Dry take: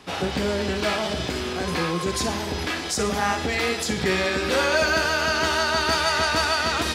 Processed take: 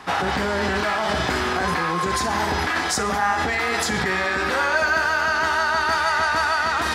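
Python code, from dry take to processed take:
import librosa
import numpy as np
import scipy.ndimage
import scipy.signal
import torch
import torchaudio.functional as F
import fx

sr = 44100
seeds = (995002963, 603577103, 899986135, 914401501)

p1 = fx.band_shelf(x, sr, hz=1200.0, db=9.0, octaves=1.7)
p2 = fx.over_compress(p1, sr, threshold_db=-24.0, ratio=-0.5)
p3 = p1 + (p2 * librosa.db_to_amplitude(-1.0))
y = p3 * librosa.db_to_amplitude(-6.0)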